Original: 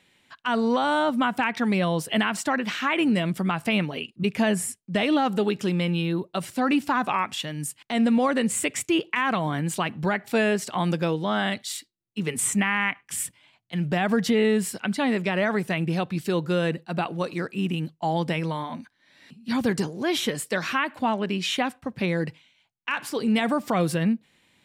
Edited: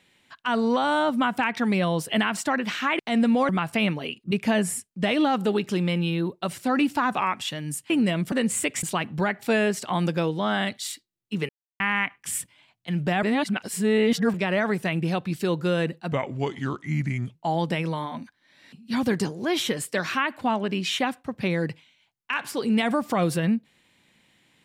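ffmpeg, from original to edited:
ffmpeg -i in.wav -filter_complex "[0:a]asplit=12[link_01][link_02][link_03][link_04][link_05][link_06][link_07][link_08][link_09][link_10][link_11][link_12];[link_01]atrim=end=2.992[link_13];[link_02]atrim=start=7.818:end=8.322[link_14];[link_03]atrim=start=3.408:end=7.822[link_15];[link_04]atrim=start=2.988:end=3.412[link_16];[link_05]atrim=start=8.318:end=8.832[link_17];[link_06]atrim=start=9.678:end=12.34,asetpts=PTS-STARTPTS,afade=type=out:start_time=2.658:duration=0.004:curve=hsin[link_18];[link_07]atrim=start=12.34:end=12.65,asetpts=PTS-STARTPTS,volume=0[link_19];[link_08]atrim=start=12.65:end=14.082,asetpts=PTS-STARTPTS,afade=type=in:duration=0.004:curve=hsin[link_20];[link_09]atrim=start=14.078:end=15.192,asetpts=PTS-STARTPTS,areverse[link_21];[link_10]atrim=start=15.188:end=16.974[link_22];[link_11]atrim=start=16.97:end=17.93,asetpts=PTS-STARTPTS,asetrate=34398,aresample=44100[link_23];[link_12]atrim=start=17.926[link_24];[link_13][link_14]acrossfade=duration=0.004:curve1=hsin:curve2=hsin[link_25];[link_25][link_15]acrossfade=duration=0.004:curve1=hsin:curve2=hsin[link_26];[link_26][link_16]acrossfade=duration=0.004:curve1=hsin:curve2=hsin[link_27];[link_27][link_17]acrossfade=duration=0.004:curve1=hsin:curve2=hsin[link_28];[link_18][link_19][link_20]concat=n=3:v=0:a=1[link_29];[link_28][link_29]acrossfade=duration=0.004:curve1=hsin:curve2=hsin[link_30];[link_30][link_21]acrossfade=duration=0.004:curve1=hsin:curve2=hsin[link_31];[link_31][link_22]acrossfade=duration=0.004:curve1=hsin:curve2=hsin[link_32];[link_32][link_23]acrossfade=duration=0.004:curve1=hsin:curve2=hsin[link_33];[link_33][link_24]acrossfade=duration=0.004:curve1=hsin:curve2=hsin" out.wav

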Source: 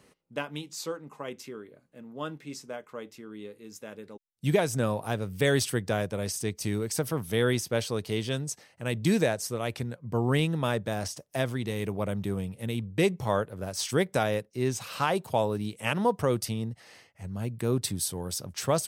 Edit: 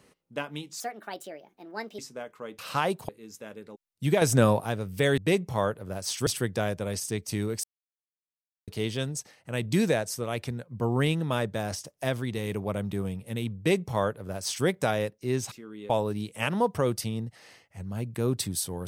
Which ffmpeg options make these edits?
ffmpeg -i in.wav -filter_complex "[0:a]asplit=13[link_01][link_02][link_03][link_04][link_05][link_06][link_07][link_08][link_09][link_10][link_11][link_12][link_13];[link_01]atrim=end=0.804[link_14];[link_02]atrim=start=0.8:end=2.52,asetpts=PTS-STARTPTS,asetrate=63945,aresample=44100[link_15];[link_03]atrim=start=2.516:end=3.122[link_16];[link_04]atrim=start=14.838:end=15.342[link_17];[link_05]atrim=start=3.498:end=4.632[link_18];[link_06]atrim=start=4.628:end=5.022,asetpts=PTS-STARTPTS,volume=7dB[link_19];[link_07]atrim=start=5.018:end=5.592[link_20];[link_08]atrim=start=12.888:end=13.982[link_21];[link_09]atrim=start=5.588:end=6.96,asetpts=PTS-STARTPTS,afade=type=out:start_time=1.368:duration=0.004:curve=hsin[link_22];[link_10]atrim=start=6.96:end=8,asetpts=PTS-STARTPTS,volume=0[link_23];[link_11]atrim=start=8:end=14.842,asetpts=PTS-STARTPTS,afade=type=in:duration=0.004:curve=hsin[link_24];[link_12]atrim=start=3.118:end=3.502[link_25];[link_13]atrim=start=15.338[link_26];[link_14][link_15]acrossfade=duration=0.004:curve1=hsin:curve2=hsin[link_27];[link_27][link_16]acrossfade=duration=0.004:curve1=hsin:curve2=hsin[link_28];[link_28][link_17]acrossfade=duration=0.004:curve1=hsin:curve2=hsin[link_29];[link_29][link_18]acrossfade=duration=0.004:curve1=hsin:curve2=hsin[link_30];[link_30][link_19]acrossfade=duration=0.004:curve1=hsin:curve2=hsin[link_31];[link_31][link_20]acrossfade=duration=0.004:curve1=hsin:curve2=hsin[link_32];[link_32][link_21]acrossfade=duration=0.004:curve1=hsin:curve2=hsin[link_33];[link_22][link_23][link_24]concat=n=3:v=0:a=1[link_34];[link_33][link_34]acrossfade=duration=0.004:curve1=hsin:curve2=hsin[link_35];[link_35][link_25]acrossfade=duration=0.004:curve1=hsin:curve2=hsin[link_36];[link_36][link_26]acrossfade=duration=0.004:curve1=hsin:curve2=hsin" out.wav

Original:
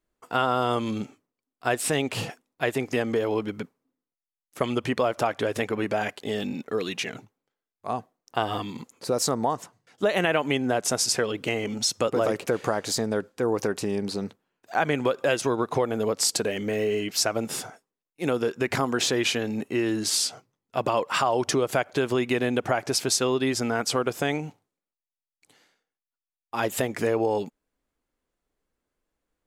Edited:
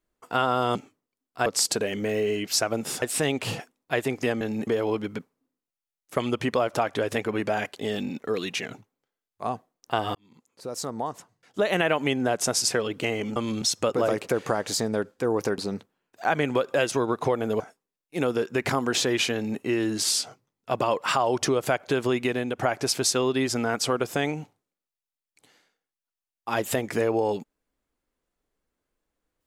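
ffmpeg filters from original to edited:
ffmpeg -i in.wav -filter_complex "[0:a]asplit=12[link_01][link_02][link_03][link_04][link_05][link_06][link_07][link_08][link_09][link_10][link_11][link_12];[link_01]atrim=end=0.752[link_13];[link_02]atrim=start=1.008:end=1.722[link_14];[link_03]atrim=start=16.098:end=17.662[link_15];[link_04]atrim=start=1.718:end=3.112[link_16];[link_05]atrim=start=19.398:end=19.662[link_17];[link_06]atrim=start=3.108:end=8.59,asetpts=PTS-STARTPTS,afade=type=out:start_time=5.478:duration=0.004:curve=hsin[link_18];[link_07]atrim=start=8.59:end=11.802,asetpts=PTS-STARTPTS,afade=type=in:duration=1.62[link_19];[link_08]atrim=start=0.748:end=1.012[link_20];[link_09]atrim=start=11.798:end=13.762[link_21];[link_10]atrim=start=14.078:end=16.102[link_22];[link_11]atrim=start=17.658:end=22.65,asetpts=PTS-STARTPTS,afade=type=out:start_time=4.562:duration=0.43:silence=0.501187[link_23];[link_12]atrim=start=22.65,asetpts=PTS-STARTPTS,afade=type=in:duration=0.004:curve=hsin:silence=0.501187[link_24];[link_13][link_14]acrossfade=duration=0.004:curve1=hsin:curve2=hsin[link_25];[link_25][link_15]acrossfade=duration=0.004:curve1=hsin:curve2=hsin[link_26];[link_26][link_16]acrossfade=duration=0.004:curve1=hsin:curve2=hsin[link_27];[link_27][link_17]acrossfade=duration=0.004:curve1=hsin:curve2=hsin[link_28];[link_18][link_19]concat=n=2:v=0:a=1[link_29];[link_28][link_29]acrossfade=duration=0.004:curve1=hsin:curve2=hsin[link_30];[link_30][link_20]acrossfade=duration=0.004:curve1=hsin:curve2=hsin[link_31];[link_31][link_21]acrossfade=duration=0.004:curve1=hsin:curve2=hsin[link_32];[link_32][link_22]acrossfade=duration=0.004:curve1=hsin:curve2=hsin[link_33];[link_23][link_24]concat=n=2:v=0:a=1[link_34];[link_33][link_34]acrossfade=duration=0.004:curve1=hsin:curve2=hsin" out.wav

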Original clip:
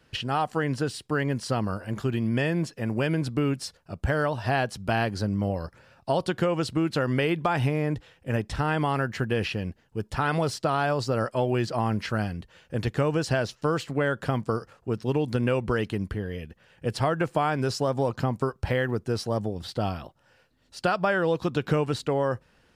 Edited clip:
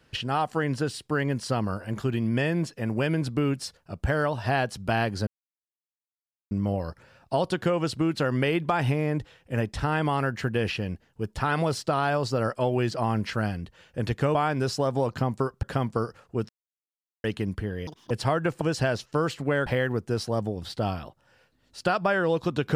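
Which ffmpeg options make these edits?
ffmpeg -i in.wav -filter_complex "[0:a]asplit=10[link_01][link_02][link_03][link_04][link_05][link_06][link_07][link_08][link_09][link_10];[link_01]atrim=end=5.27,asetpts=PTS-STARTPTS,afade=type=out:start_time=5.266:duration=0.004:curve=hsin,apad=pad_dur=1.24[link_11];[link_02]atrim=start=5.27:end=13.112,asetpts=PTS-STARTPTS,afade=type=in:duration=0.004:curve=hsin[link_12];[link_03]atrim=start=17.368:end=18.652[link_13];[link_04]atrim=start=14.158:end=15.02,asetpts=PTS-STARTPTS,afade=type=out:start_time=0.858:duration=0.004:curve=hsin[link_14];[link_05]atrim=start=15.02:end=15.77,asetpts=PTS-STARTPTS,volume=0[link_15];[link_06]atrim=start=15.77:end=16.404,asetpts=PTS-STARTPTS,afade=type=in:duration=0.004:curve=hsin[link_16];[link_07]atrim=start=16.4:end=16.86,asetpts=PTS-STARTPTS,asetrate=86436,aresample=44100[link_17];[link_08]atrim=start=16.856:end=17.372[link_18];[link_09]atrim=start=13.108:end=14.162[link_19];[link_10]atrim=start=18.648[link_20];[link_11][link_12]concat=n=2:v=0:a=1[link_21];[link_21][link_13]acrossfade=duration=0.004:curve1=hsin:curve2=hsin[link_22];[link_14][link_15][link_16]concat=n=3:v=0:a=1[link_23];[link_22][link_23]acrossfade=duration=0.004:curve1=hsin:curve2=hsin[link_24];[link_24][link_17]acrossfade=duration=0.004:curve1=hsin:curve2=hsin[link_25];[link_25][link_18]acrossfade=duration=0.004:curve1=hsin:curve2=hsin[link_26];[link_26][link_19]acrossfade=duration=0.004:curve1=hsin:curve2=hsin[link_27];[link_27][link_20]acrossfade=duration=0.004:curve1=hsin:curve2=hsin" out.wav

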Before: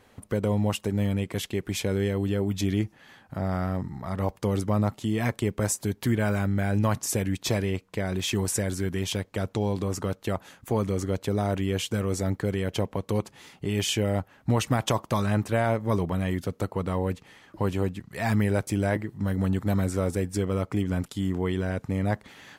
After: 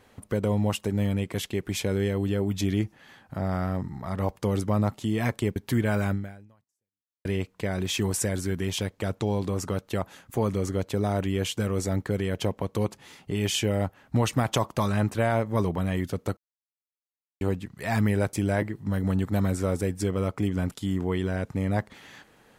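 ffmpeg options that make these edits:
ffmpeg -i in.wav -filter_complex "[0:a]asplit=5[link_01][link_02][link_03][link_04][link_05];[link_01]atrim=end=5.562[link_06];[link_02]atrim=start=5.898:end=7.59,asetpts=PTS-STARTPTS,afade=type=out:start_time=0.572:duration=1.12:curve=exp[link_07];[link_03]atrim=start=7.59:end=16.71,asetpts=PTS-STARTPTS,afade=type=in:duration=0.004:curve=hsin,afade=type=out:start_time=9.116:duration=0.004:curve=hsin[link_08];[link_04]atrim=start=16.71:end=17.75,asetpts=PTS-STARTPTS,volume=0[link_09];[link_05]atrim=start=17.75,asetpts=PTS-STARTPTS,afade=type=in:duration=0.004:curve=hsin[link_10];[link_07][link_08][link_09][link_10]concat=n=4:v=0:a=1[link_11];[link_06][link_11]acrossfade=duration=0.004:curve1=hsin:curve2=hsin" out.wav

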